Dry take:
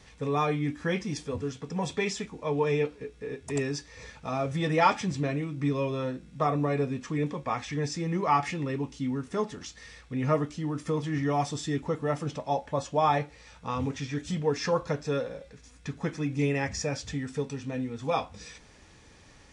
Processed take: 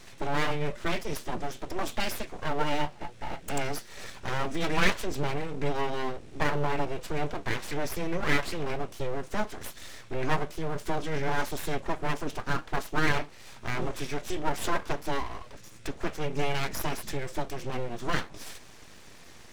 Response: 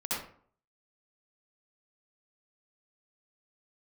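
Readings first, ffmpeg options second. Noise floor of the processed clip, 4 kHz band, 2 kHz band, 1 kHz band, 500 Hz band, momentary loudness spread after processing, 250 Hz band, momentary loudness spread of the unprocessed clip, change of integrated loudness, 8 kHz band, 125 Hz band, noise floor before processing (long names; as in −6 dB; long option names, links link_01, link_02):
−49 dBFS, +3.0 dB, +4.5 dB, −2.5 dB, −3.5 dB, 13 LU, −4.5 dB, 10 LU, −2.5 dB, 0.0 dB, −4.5 dB, −55 dBFS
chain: -filter_complex "[0:a]asplit=2[link_01][link_02];[link_02]acompressor=threshold=-38dB:ratio=6,volume=1dB[link_03];[link_01][link_03]amix=inputs=2:normalize=0,aeval=exprs='abs(val(0))':channel_layout=same"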